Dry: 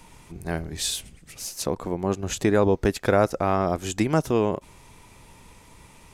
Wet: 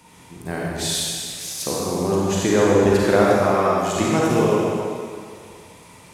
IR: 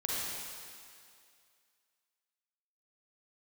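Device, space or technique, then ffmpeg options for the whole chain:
stairwell: -filter_complex "[0:a]highpass=95[a];[1:a]atrim=start_sample=2205[b];[a][b]afir=irnorm=-1:irlink=0,asettb=1/sr,asplit=3[c][d][e];[c]atrim=end=3.544[f];[d]atrim=start=3.54:end=3.96,asetpts=PTS-STARTPTS,afade=t=in:d=0.004:c=qsin,afade=t=out:st=0.416:d=0.004:c=qsin,lowshelf=f=220:g=-10.5[g];[e]atrim=start=3.956[h];[f][g]acrossfade=d=0.004:c1=hsin:c2=qsin[i];[i][h]acrossfade=d=0.004:c1=qsin:c2=hsin"

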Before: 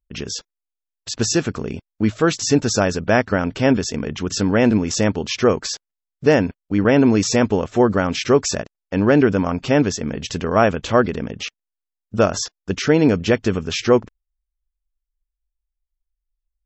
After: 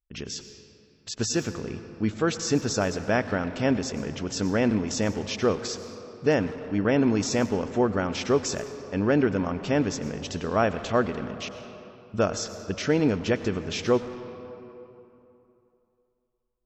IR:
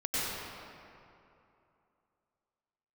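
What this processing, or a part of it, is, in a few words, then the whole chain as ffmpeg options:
saturated reverb return: -filter_complex "[0:a]asplit=2[a][b];[1:a]atrim=start_sample=2205[c];[b][c]afir=irnorm=-1:irlink=0,asoftclip=type=tanh:threshold=-9dB,volume=-15.5dB[d];[a][d]amix=inputs=2:normalize=0,volume=-8.5dB"

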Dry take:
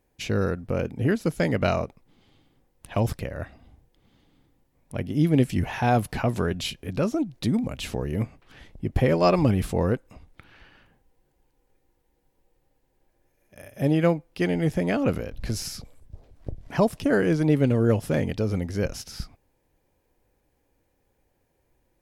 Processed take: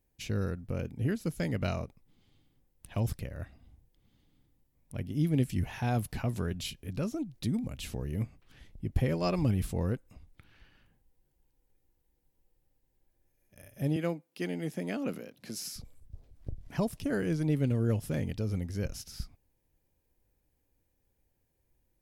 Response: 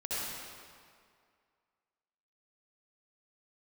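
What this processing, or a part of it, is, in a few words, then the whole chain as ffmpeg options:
smiley-face EQ: -filter_complex "[0:a]lowshelf=f=170:g=4.5,equalizer=f=770:t=o:w=2.8:g=-5.5,highshelf=f=10k:g=7.5,asettb=1/sr,asplit=3[a][b][c];[a]atrim=end=13.964[d];[b]atrim=start=13.96:end=15.76,asetpts=PTS-STARTPTS,afade=t=in:d=0.004:c=qsin,afade=t=out:st=1.796:d=0.004:c=qsin,highpass=f=190:w=0.5412,highpass=f=190:w=1.3066[e];[c]atrim=start=15.756[f];[d][e]acrossfade=d=0.004:c1=hsin:c2=qsin[g];[g][f]acrossfade=d=0.004:c1=qsin:c2=hsin,volume=-7.5dB"

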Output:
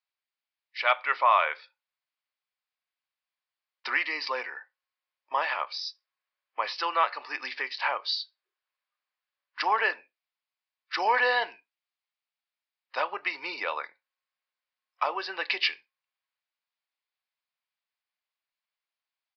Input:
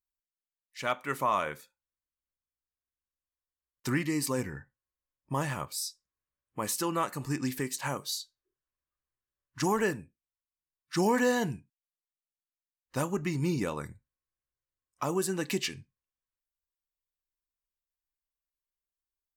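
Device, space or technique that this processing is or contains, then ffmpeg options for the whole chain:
musical greeting card: -af "aresample=11025,aresample=44100,highpass=f=630:w=0.5412,highpass=f=630:w=1.3066,equalizer=f=2.3k:t=o:w=0.51:g=4.5,volume=7dB"

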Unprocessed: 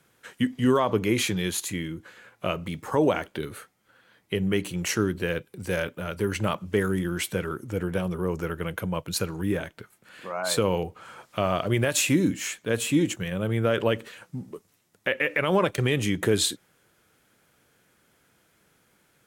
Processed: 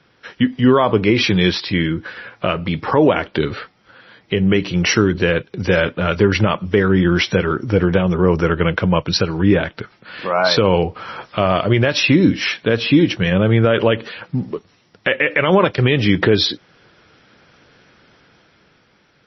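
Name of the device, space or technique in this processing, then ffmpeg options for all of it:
low-bitrate web radio: -filter_complex "[0:a]asettb=1/sr,asplit=3[a][b][c];[a]atrim=end=1.694[d];[b]atrim=start=1.69:end=2.59,asetpts=PTS-STARTPTS,afade=t=in:d=0.004:c=qsin,afade=t=out:st=0.896:d=0.004:c=qsin,adynamicequalizer=threshold=0.00398:dfrequency=1600:dqfactor=3.1:tfrequency=1600:tqfactor=3.1:attack=5:release=100:ratio=0.375:range=2.5:mode=boostabove:tftype=bell[e];[c]atrim=start=2.586[f];[d][e]acrossfade=d=0.004:c1=hsin:c2=qsin[g];[g][f]acrossfade=d=0.004:c1=qsin:c2=hsin,dynaudnorm=f=170:g=13:m=6dB,alimiter=limit=-11.5dB:level=0:latency=1:release=331,volume=9dB" -ar 22050 -c:a libmp3lame -b:a 24k

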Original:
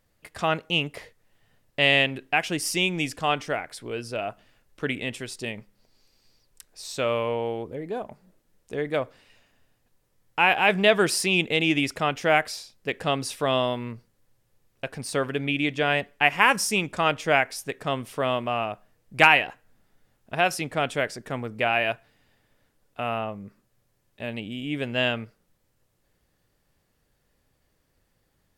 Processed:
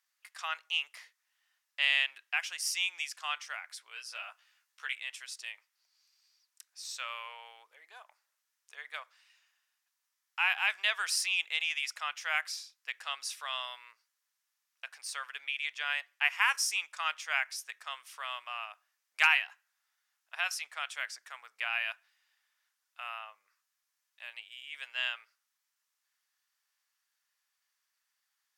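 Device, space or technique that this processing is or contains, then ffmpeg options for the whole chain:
headphones lying on a table: -filter_complex "[0:a]highpass=f=1.1k:w=0.5412,highpass=f=1.1k:w=1.3066,equalizer=f=5.8k:t=o:w=0.57:g=5,asettb=1/sr,asplit=3[a][b][c];[a]atrim=end=3.944[d];[b]atrim=start=3.94:end=4.94,asetpts=PTS-STARTPTS,afade=t=in:d=0.004:c=qsin,afade=t=out:st=0.996:d=0.004:c=qsin,asplit=2[e][f];[f]adelay=15,volume=-2dB[g];[e][g]amix=inputs=2:normalize=0,atrim=end_sample=44100[h];[c]atrim=start=4.936[i];[d][h]acrossfade=d=0.004:c1=hsin:c2=qsin[j];[j][i]acrossfade=d=0.004:c1=qsin:c2=hsin,volume=-7dB"

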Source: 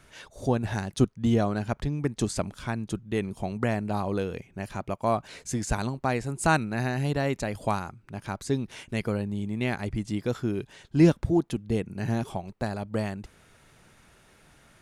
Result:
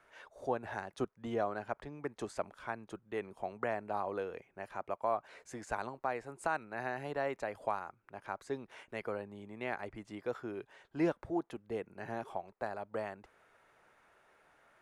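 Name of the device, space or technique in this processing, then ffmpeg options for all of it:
DJ mixer with the lows and highs turned down: -filter_complex "[0:a]acrossover=split=410 2100:gain=0.112 1 0.178[a][b][c];[a][b][c]amix=inputs=3:normalize=0,alimiter=limit=-17.5dB:level=0:latency=1:release=337,volume=-3.5dB"

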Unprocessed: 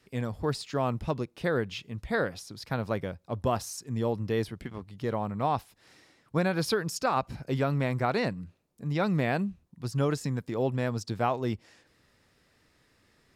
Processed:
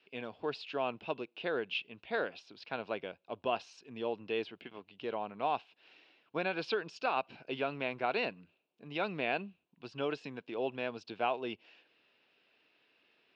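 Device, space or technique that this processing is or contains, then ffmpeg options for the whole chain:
phone earpiece: -af "highpass=470,equalizer=f=540:t=q:w=4:g=-5,equalizer=f=860:t=q:w=4:g=-4,equalizer=f=1.2k:t=q:w=4:g=-8,equalizer=f=1.9k:t=q:w=4:g=-10,equalizer=f=2.7k:t=q:w=4:g=9,lowpass=f=3.6k:w=0.5412,lowpass=f=3.6k:w=1.3066"

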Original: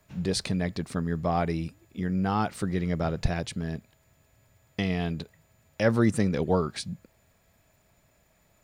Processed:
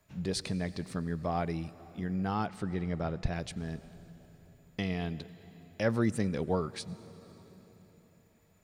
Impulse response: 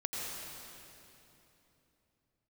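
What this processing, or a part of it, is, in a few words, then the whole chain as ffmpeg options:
compressed reverb return: -filter_complex "[0:a]asettb=1/sr,asplit=3[a][b][c];[a]atrim=end=2.464[d];[b]atrim=start=2.46:end=3.33,asetpts=PTS-STARTPTS,afade=t=in:d=0.004:c=qsin,afade=t=out:st=0.866:d=0.004:c=qsin,highshelf=f=6.5k:g=-11.5[e];[c]atrim=start=3.326[f];[d][e]acrossfade=d=0.004:c1=hsin:c2=qsin[g];[g][f]acrossfade=d=0.004:c1=qsin:c2=hsin,asplit=2[h][i];[1:a]atrim=start_sample=2205[j];[i][j]afir=irnorm=-1:irlink=0,acompressor=threshold=-26dB:ratio=6,volume=-14dB[k];[h][k]amix=inputs=2:normalize=0,volume=-6.5dB"

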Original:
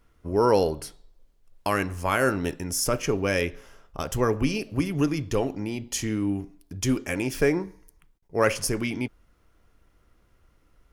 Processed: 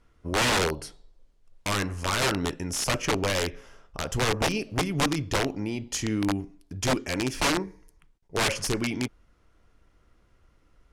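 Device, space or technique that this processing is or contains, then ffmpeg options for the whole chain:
overflowing digital effects unit: -af "aeval=exprs='(mod(7.94*val(0)+1,2)-1)/7.94':c=same,lowpass=8.9k"

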